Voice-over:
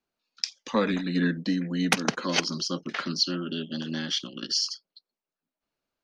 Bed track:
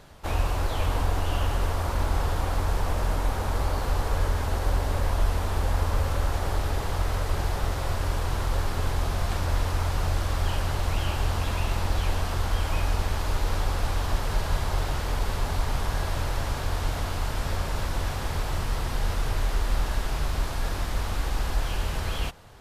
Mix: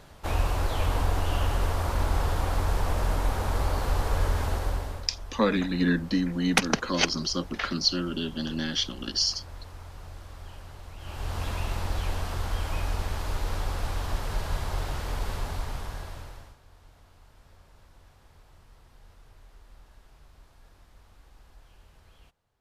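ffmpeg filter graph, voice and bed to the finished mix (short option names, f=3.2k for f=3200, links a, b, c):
-filter_complex "[0:a]adelay=4650,volume=1dB[a];[1:a]volume=13dB,afade=t=out:st=4.45:d=0.64:silence=0.141254,afade=t=in:st=10.98:d=0.46:silence=0.211349,afade=t=out:st=15.32:d=1.25:silence=0.0668344[b];[a][b]amix=inputs=2:normalize=0"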